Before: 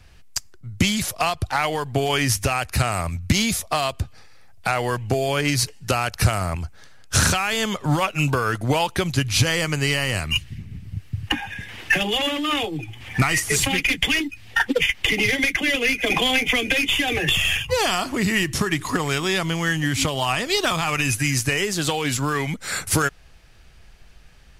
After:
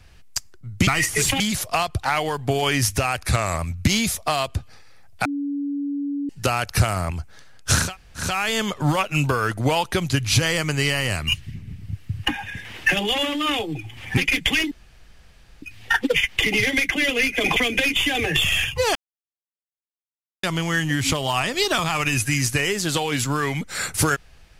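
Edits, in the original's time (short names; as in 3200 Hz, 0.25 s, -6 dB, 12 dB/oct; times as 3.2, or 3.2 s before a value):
2.73–3.03 speed 93%
4.7–5.74 bleep 284 Hz -23 dBFS
7.3 insert room tone 0.41 s, crossfade 0.24 s
13.21–13.74 move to 0.87
14.28 insert room tone 0.91 s
16.22–16.49 cut
17.88–19.36 mute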